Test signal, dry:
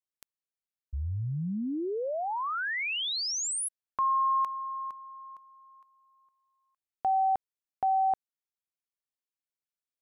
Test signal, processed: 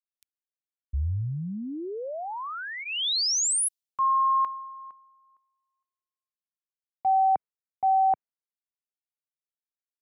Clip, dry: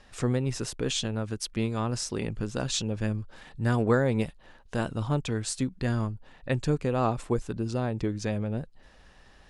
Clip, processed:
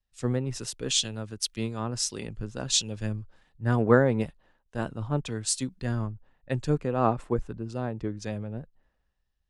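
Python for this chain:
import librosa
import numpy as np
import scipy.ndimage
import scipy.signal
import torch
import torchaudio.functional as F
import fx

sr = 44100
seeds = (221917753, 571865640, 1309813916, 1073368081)

y = fx.notch(x, sr, hz=2300.0, q=27.0)
y = fx.band_widen(y, sr, depth_pct=100)
y = F.gain(torch.from_numpy(y), -2.0).numpy()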